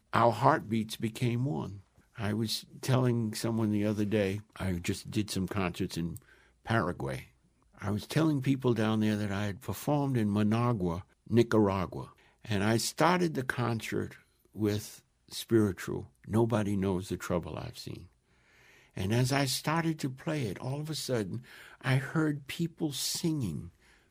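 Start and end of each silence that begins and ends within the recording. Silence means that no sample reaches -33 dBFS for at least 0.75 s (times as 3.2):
17.94–18.98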